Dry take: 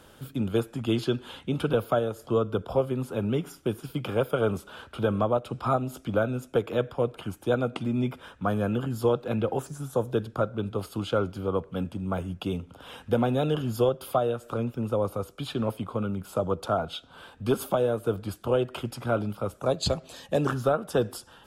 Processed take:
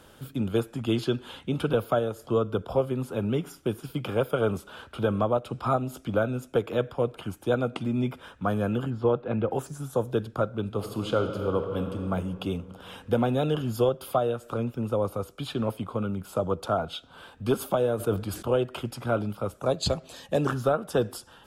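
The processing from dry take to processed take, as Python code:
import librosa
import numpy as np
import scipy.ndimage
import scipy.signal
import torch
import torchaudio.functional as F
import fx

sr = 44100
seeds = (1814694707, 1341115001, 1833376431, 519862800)

y = fx.lowpass(x, sr, hz=2300.0, slope=12, at=(8.9, 9.51))
y = fx.reverb_throw(y, sr, start_s=10.64, length_s=1.47, rt60_s=2.8, drr_db=5.0)
y = fx.sustainer(y, sr, db_per_s=110.0, at=(17.98, 18.48), fade=0.02)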